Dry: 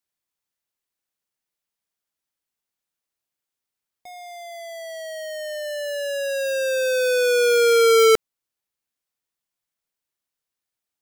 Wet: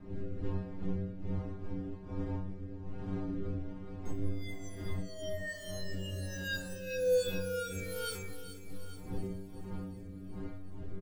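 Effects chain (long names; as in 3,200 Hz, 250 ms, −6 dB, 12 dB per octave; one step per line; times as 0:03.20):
phase distortion by the signal itself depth 0.055 ms
wind on the microphone 320 Hz −30 dBFS
downward compressor 12 to 1, threshold −26 dBFS, peak gain reduction 14 dB
low-shelf EQ 65 Hz +11.5 dB
stiff-string resonator 92 Hz, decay 0.76 s, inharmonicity 0.008
repeating echo 422 ms, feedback 38%, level −7.5 dB
rotating-speaker cabinet horn 1.2 Hz
parametric band 620 Hz −5.5 dB 0.59 octaves
on a send: delay with a high-pass on its return 370 ms, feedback 67%, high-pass 4,100 Hz, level −15 dB
on the sum: level +6.5 dB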